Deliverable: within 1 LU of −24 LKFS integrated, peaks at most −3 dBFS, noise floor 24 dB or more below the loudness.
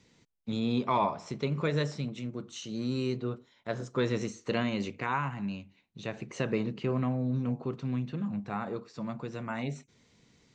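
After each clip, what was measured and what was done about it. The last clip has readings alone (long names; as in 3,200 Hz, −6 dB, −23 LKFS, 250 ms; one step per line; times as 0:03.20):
integrated loudness −33.5 LKFS; sample peak −16.0 dBFS; target loudness −24.0 LKFS
→ level +9.5 dB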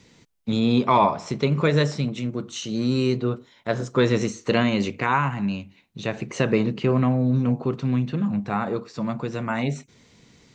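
integrated loudness −23.5 LKFS; sample peak −6.5 dBFS; background noise floor −57 dBFS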